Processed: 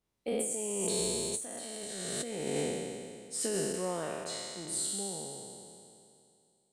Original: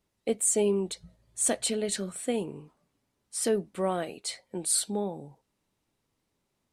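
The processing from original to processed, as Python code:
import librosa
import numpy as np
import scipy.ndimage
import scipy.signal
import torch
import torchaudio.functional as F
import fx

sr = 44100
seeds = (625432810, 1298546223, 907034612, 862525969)

y = fx.spec_trails(x, sr, decay_s=2.67)
y = fx.doppler_pass(y, sr, speed_mps=12, closest_m=5.2, pass_at_s=1.92)
y = fx.over_compress(y, sr, threshold_db=-35.0, ratio=-1.0)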